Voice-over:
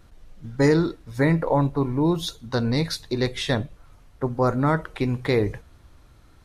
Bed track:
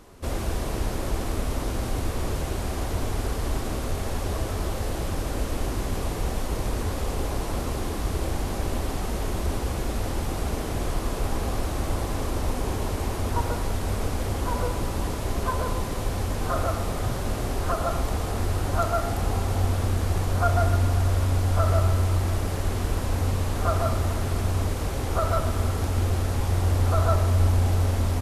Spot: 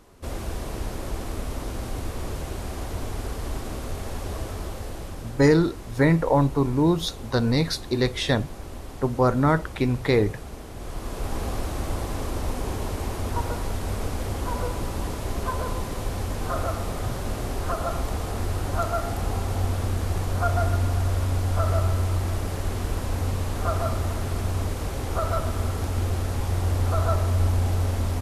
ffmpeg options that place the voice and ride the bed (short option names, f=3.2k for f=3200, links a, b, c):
-filter_complex "[0:a]adelay=4800,volume=1dB[a];[1:a]volume=5.5dB,afade=t=out:st=4.43:d=0.98:silence=0.446684,afade=t=in:st=10.75:d=0.65:silence=0.354813[b];[a][b]amix=inputs=2:normalize=0"